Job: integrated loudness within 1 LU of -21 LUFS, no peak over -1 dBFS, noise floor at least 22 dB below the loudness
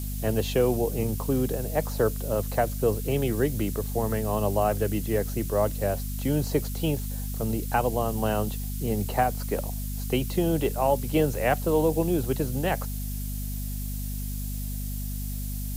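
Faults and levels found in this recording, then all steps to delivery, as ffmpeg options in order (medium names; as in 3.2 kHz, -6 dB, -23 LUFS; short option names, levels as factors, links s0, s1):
hum 50 Hz; highest harmonic 250 Hz; hum level -29 dBFS; noise floor -32 dBFS; noise floor target -50 dBFS; loudness -27.5 LUFS; peak level -10.5 dBFS; loudness target -21.0 LUFS
-> -af "bandreject=f=50:t=h:w=6,bandreject=f=100:t=h:w=6,bandreject=f=150:t=h:w=6,bandreject=f=200:t=h:w=6,bandreject=f=250:t=h:w=6"
-af "afftdn=nr=18:nf=-32"
-af "volume=2.11"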